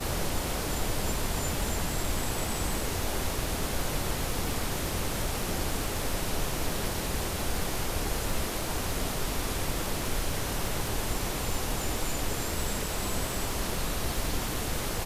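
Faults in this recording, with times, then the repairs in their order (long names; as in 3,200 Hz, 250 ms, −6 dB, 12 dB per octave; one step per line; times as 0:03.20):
surface crackle 34 per second −33 dBFS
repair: click removal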